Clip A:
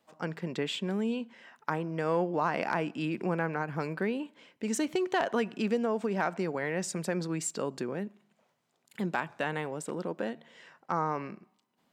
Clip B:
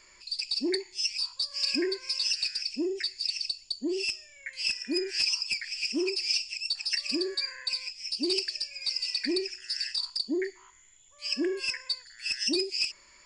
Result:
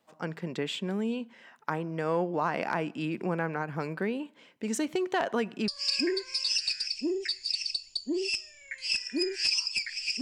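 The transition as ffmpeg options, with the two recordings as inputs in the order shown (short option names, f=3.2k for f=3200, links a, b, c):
-filter_complex "[0:a]apad=whole_dur=10.21,atrim=end=10.21,atrim=end=5.682[a];[1:a]atrim=start=1.428:end=5.96[b];[a][b]acrossfade=d=0.004:c1=hsin:c2=hsin"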